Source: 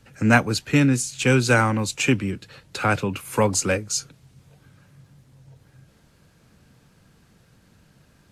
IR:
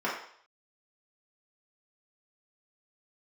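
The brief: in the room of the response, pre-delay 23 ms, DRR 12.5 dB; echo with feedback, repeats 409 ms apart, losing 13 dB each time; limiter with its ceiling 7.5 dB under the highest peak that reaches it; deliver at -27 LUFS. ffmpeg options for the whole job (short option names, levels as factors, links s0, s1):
-filter_complex "[0:a]alimiter=limit=0.266:level=0:latency=1,aecho=1:1:409|818|1227:0.224|0.0493|0.0108,asplit=2[s0][s1];[1:a]atrim=start_sample=2205,adelay=23[s2];[s1][s2]afir=irnorm=-1:irlink=0,volume=0.0708[s3];[s0][s3]amix=inputs=2:normalize=0,volume=0.668"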